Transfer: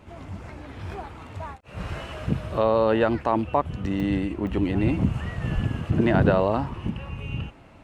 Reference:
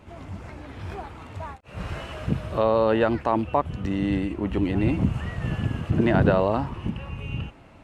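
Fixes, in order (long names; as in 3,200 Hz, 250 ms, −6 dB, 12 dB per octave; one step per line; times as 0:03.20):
0:05.54–0:05.66: high-pass filter 140 Hz 24 dB per octave
repair the gap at 0:01.29/0:04.00/0:04.47, 1.1 ms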